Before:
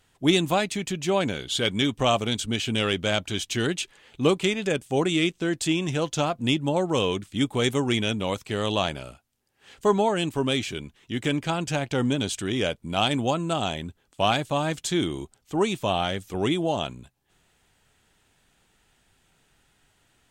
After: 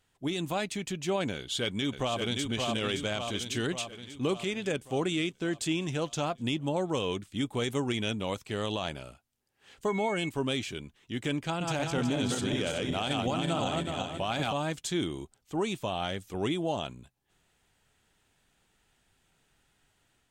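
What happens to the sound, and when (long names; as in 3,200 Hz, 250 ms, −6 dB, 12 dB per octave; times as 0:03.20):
0:01.35–0:02.48: delay throw 570 ms, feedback 60%, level −5.5 dB
0:09.88–0:10.28: steady tone 2,200 Hz −31 dBFS
0:11.42–0:14.53: feedback delay that plays each chunk backwards 186 ms, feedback 61%, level −2.5 dB
whole clip: brickwall limiter −14.5 dBFS; automatic gain control gain up to 3 dB; level −8.5 dB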